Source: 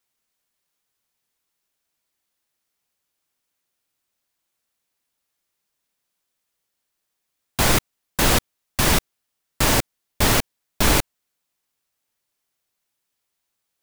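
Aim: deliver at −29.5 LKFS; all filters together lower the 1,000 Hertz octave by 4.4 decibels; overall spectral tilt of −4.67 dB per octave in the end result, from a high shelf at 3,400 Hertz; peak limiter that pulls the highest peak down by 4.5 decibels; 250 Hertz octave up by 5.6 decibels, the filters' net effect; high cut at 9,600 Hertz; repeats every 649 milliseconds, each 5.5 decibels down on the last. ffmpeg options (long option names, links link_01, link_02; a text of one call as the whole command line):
ffmpeg -i in.wav -af "lowpass=9600,equalizer=frequency=250:width_type=o:gain=7.5,equalizer=frequency=1000:width_type=o:gain=-5.5,highshelf=frequency=3400:gain=-6,alimiter=limit=-9dB:level=0:latency=1,aecho=1:1:649|1298|1947|2596|3245|3894|4543:0.531|0.281|0.149|0.079|0.0419|0.0222|0.0118,volume=-5.5dB" out.wav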